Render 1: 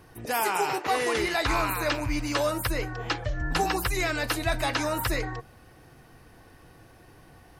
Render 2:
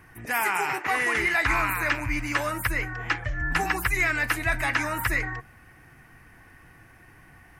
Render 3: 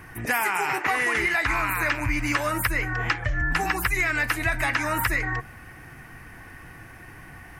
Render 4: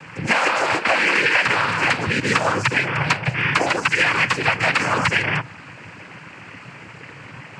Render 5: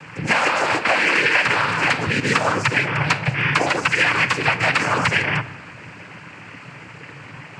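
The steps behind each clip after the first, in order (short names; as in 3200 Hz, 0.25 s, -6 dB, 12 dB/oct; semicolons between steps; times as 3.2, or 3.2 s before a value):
graphic EQ 500/2000/4000 Hz -8/+11/-10 dB
compressor, threshold -29 dBFS, peak gain reduction 10 dB; gain +8 dB
noise vocoder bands 8; gain +6.5 dB
shoebox room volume 1300 m³, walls mixed, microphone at 0.39 m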